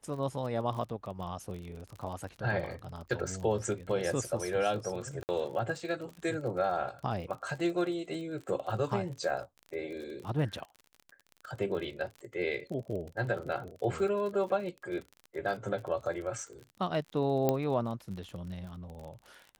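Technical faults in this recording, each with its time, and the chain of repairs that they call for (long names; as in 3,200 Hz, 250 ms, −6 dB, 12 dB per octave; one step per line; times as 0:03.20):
surface crackle 40 per second −39 dBFS
0:05.23–0:05.29: drop-out 59 ms
0:17.49: click −14 dBFS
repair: click removal
repair the gap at 0:05.23, 59 ms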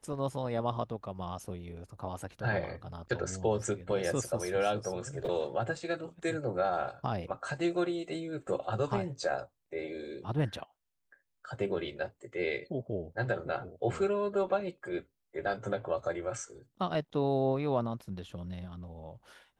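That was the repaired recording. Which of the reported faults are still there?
none of them is left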